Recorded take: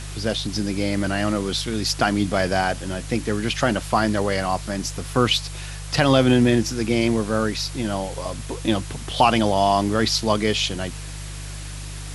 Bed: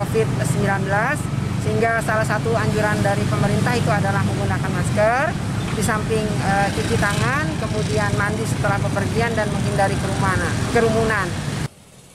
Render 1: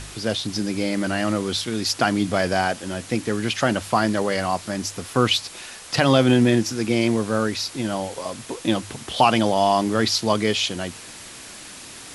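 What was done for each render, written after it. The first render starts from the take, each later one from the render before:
hum removal 50 Hz, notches 3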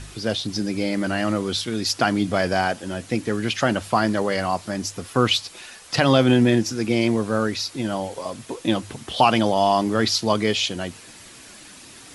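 broadband denoise 6 dB, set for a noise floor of −40 dBFS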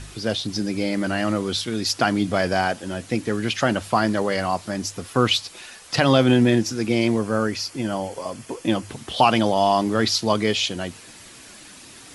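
0:07.18–0:08.89: notch filter 3,800 Hz, Q 5.3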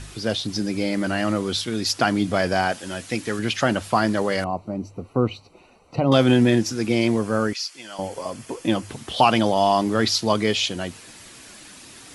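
0:02.72–0:03.39: tilt shelving filter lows −4 dB, about 940 Hz
0:04.44–0:06.12: moving average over 26 samples
0:07.53–0:07.99: resonant band-pass 4,300 Hz, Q 0.59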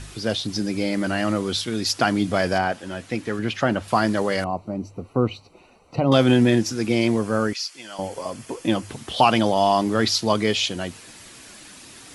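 0:02.58–0:03.88: high-shelf EQ 3,800 Hz −11.5 dB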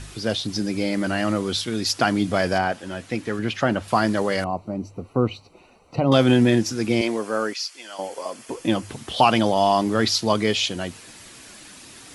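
0:07.01–0:08.49: high-pass filter 330 Hz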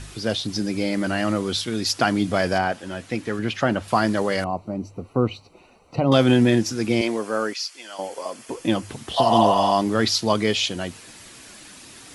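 0:09.20–0:09.69: healed spectral selection 580–3,000 Hz after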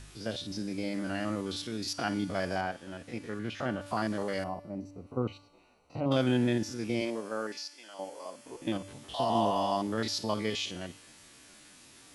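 spectrum averaged block by block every 50 ms
tuned comb filter 290 Hz, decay 1.1 s, mix 70%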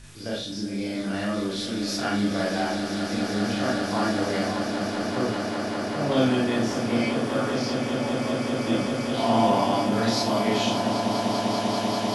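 echo that builds up and dies away 196 ms, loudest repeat 8, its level −10 dB
four-comb reverb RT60 0.34 s, combs from 27 ms, DRR −4 dB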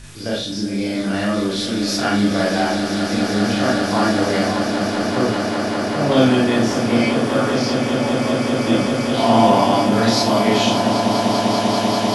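level +7.5 dB

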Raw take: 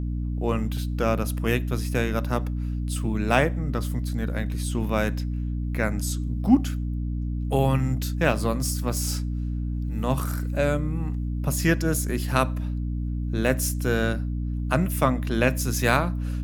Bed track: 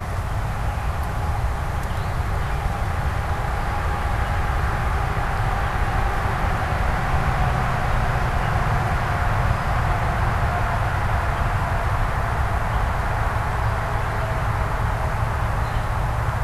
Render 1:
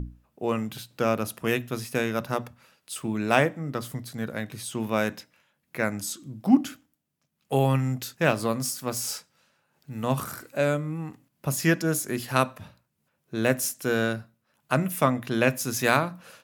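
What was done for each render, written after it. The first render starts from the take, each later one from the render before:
mains-hum notches 60/120/180/240/300 Hz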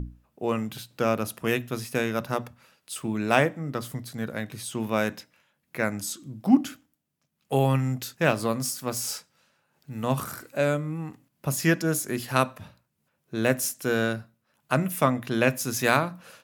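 no processing that can be heard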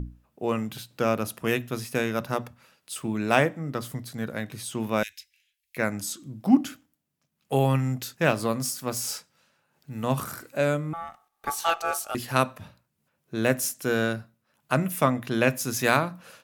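0:05.03–0:05.77: inverse Chebyshev band-stop filter 110–1,200 Hz
0:10.93–0:12.15: ring modulation 1,000 Hz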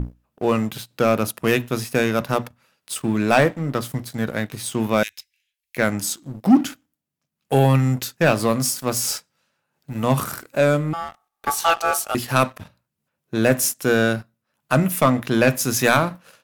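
leveller curve on the samples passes 2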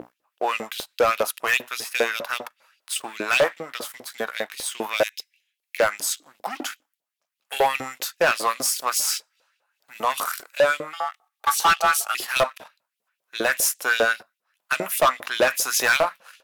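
auto-filter high-pass saw up 5 Hz 460–3,800 Hz
hard clipping −13 dBFS, distortion −9 dB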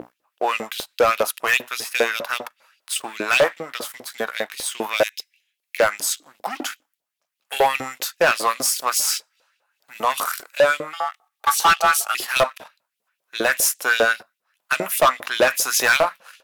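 level +2.5 dB

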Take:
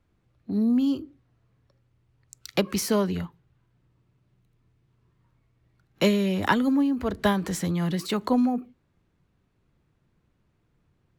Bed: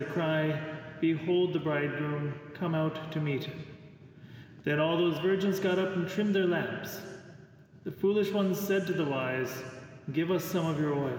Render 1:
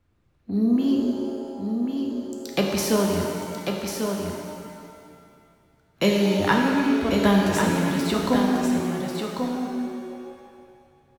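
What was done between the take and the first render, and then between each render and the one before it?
on a send: single-tap delay 1,093 ms −5.5 dB
on the sum: reverb with rising layers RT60 2.1 s, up +7 semitones, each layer −8 dB, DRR 0 dB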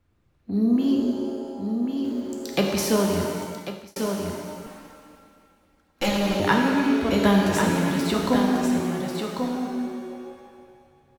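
0:02.04–0:02.71: mu-law and A-law mismatch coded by mu
0:03.42–0:03.96: fade out
0:04.66–0:06.40: lower of the sound and its delayed copy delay 3.7 ms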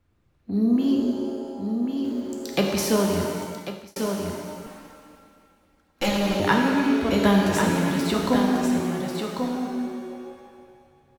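no processing that can be heard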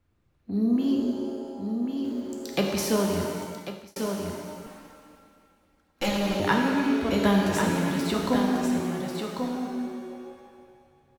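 level −3 dB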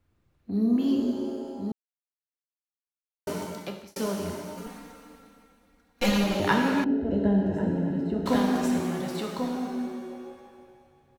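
0:01.72–0:03.27: silence
0:04.57–0:06.24: comb filter 4.2 ms, depth 91%
0:06.84–0:08.26: moving average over 38 samples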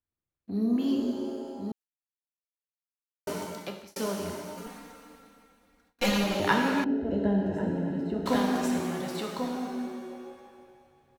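low-shelf EQ 290 Hz −5 dB
noise gate with hold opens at −56 dBFS

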